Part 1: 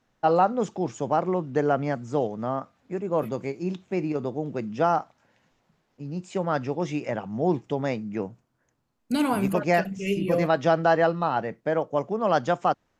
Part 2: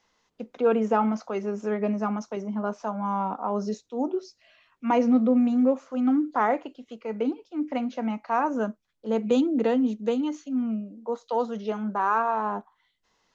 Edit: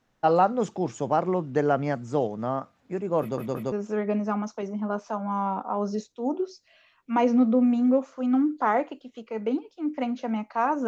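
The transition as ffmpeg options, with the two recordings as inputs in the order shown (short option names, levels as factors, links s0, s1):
-filter_complex "[0:a]apad=whole_dur=10.87,atrim=end=10.87,asplit=3[s0][s1][s2];[s0]atrim=end=3.382[s3];[s1]atrim=start=3.208:end=3.382[s4];[s2]atrim=start=3.208:end=3.382[s5];[1:a]atrim=start=1.458:end=8.61[s6];[s3][s4]acrossfade=d=0.004:c1=hsin:c2=hsin[s7];[s7][s5]acrossfade=d=0.004:c1=hsin:c2=hsin[s8];[s8][s6]acrossfade=d=0.004:c1=hsin:c2=hsin"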